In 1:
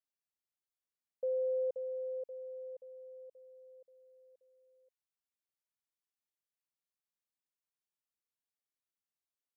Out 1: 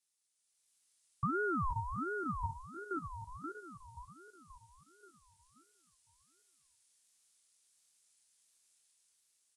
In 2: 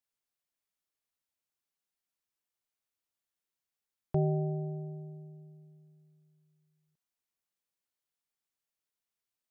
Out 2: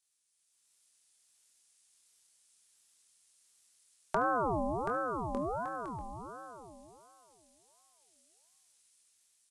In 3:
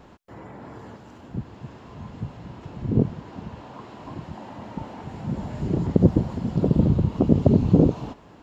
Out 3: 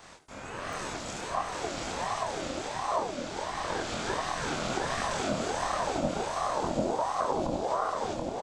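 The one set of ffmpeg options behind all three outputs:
-filter_complex "[0:a]asplit=2[a][b];[b]adelay=24,volume=-3dB[c];[a][c]amix=inputs=2:normalize=0,dynaudnorm=f=100:g=11:m=8.5dB,asplit=2[d][e];[e]aecho=0:1:73:0.237[f];[d][f]amix=inputs=2:normalize=0,aresample=22050,aresample=44100,alimiter=limit=-7.5dB:level=0:latency=1:release=389,aemphasis=mode=production:type=50fm,acompressor=threshold=-24dB:ratio=3,highshelf=f=2.2k:g=12,bandreject=f=59.74:t=h:w=4,bandreject=f=119.48:t=h:w=4,bandreject=f=179.22:t=h:w=4,bandreject=f=238.96:t=h:w=4,bandreject=f=298.7:t=h:w=4,bandreject=f=358.44:t=h:w=4,bandreject=f=418.18:t=h:w=4,bandreject=f=477.92:t=h:w=4,bandreject=f=537.66:t=h:w=4,bandreject=f=597.4:t=h:w=4,bandreject=f=657.14:t=h:w=4,bandreject=f=716.88:t=h:w=4,bandreject=f=776.62:t=h:w=4,bandreject=f=836.36:t=h:w=4,bandreject=f=896.1:t=h:w=4,bandreject=f=955.84:t=h:w=4,bandreject=f=1.01558k:t=h:w=4,bandreject=f=1.07532k:t=h:w=4,bandreject=f=1.13506k:t=h:w=4,bandreject=f=1.1948k:t=h:w=4,bandreject=f=1.25454k:t=h:w=4,bandreject=f=1.31428k:t=h:w=4,bandreject=f=1.37402k:t=h:w=4,bandreject=f=1.43376k:t=h:w=4,bandreject=f=1.4935k:t=h:w=4,bandreject=f=1.55324k:t=h:w=4,bandreject=f=1.61298k:t=h:w=4,bandreject=f=1.67272k:t=h:w=4,asplit=2[g][h];[h]aecho=0:1:730|1204|1513|1713|1844:0.631|0.398|0.251|0.158|0.1[i];[g][i]amix=inputs=2:normalize=0,aeval=exprs='val(0)*sin(2*PI*670*n/s+670*0.4/1.4*sin(2*PI*1.4*n/s))':c=same,volume=-2.5dB"

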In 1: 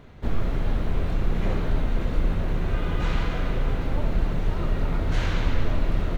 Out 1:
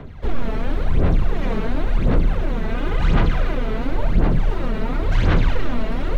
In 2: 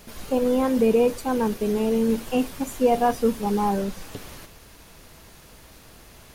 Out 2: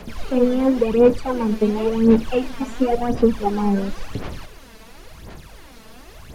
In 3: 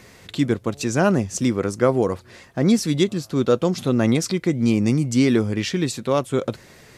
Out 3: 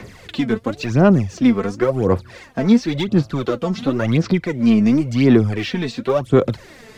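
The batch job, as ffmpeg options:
-filter_complex "[0:a]acrossover=split=6300[a][b];[b]acompressor=threshold=-53dB:ratio=4:attack=1:release=60[c];[a][c]amix=inputs=2:normalize=0,highshelf=f=5.4k:g=-7,acrossover=split=110|560|4700[d][e][f][g];[d]acompressor=threshold=-25dB:ratio=4[h];[e]acompressor=threshold=-21dB:ratio=4[i];[f]acompressor=threshold=-29dB:ratio=4[j];[g]acompressor=threshold=-52dB:ratio=4[k];[h][i][j][k]amix=inputs=4:normalize=0,asplit=2[l][m];[m]volume=24dB,asoftclip=hard,volume=-24dB,volume=-5.5dB[n];[l][n]amix=inputs=2:normalize=0,aphaser=in_gain=1:out_gain=1:delay=4.6:decay=0.66:speed=0.94:type=sinusoidal"

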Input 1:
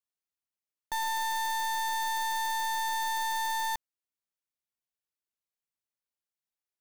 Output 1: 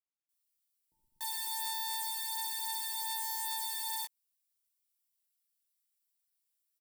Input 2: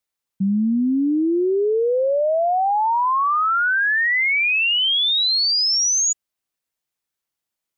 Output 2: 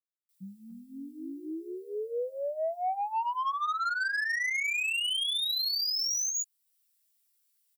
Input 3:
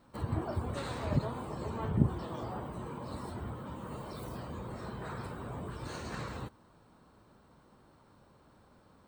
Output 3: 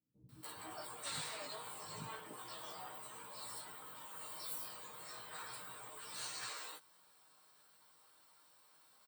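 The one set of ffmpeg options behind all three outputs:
-filter_complex "[0:a]aderivative,bandreject=f=6.5k:w=11,aecho=1:1:6.5:0.46,asplit=2[a][b];[b]acompressor=threshold=-40dB:ratio=6,volume=1dB[c];[a][c]amix=inputs=2:normalize=0,alimiter=limit=-24dB:level=0:latency=1:release=53,flanger=delay=15.5:depth=3.6:speed=0.33,acrossover=split=690[d][e];[e]asoftclip=type=tanh:threshold=-32dB[f];[d][f]amix=inputs=2:normalize=0,acrossover=split=270[g][h];[h]adelay=290[i];[g][i]amix=inputs=2:normalize=0,volume=5dB"

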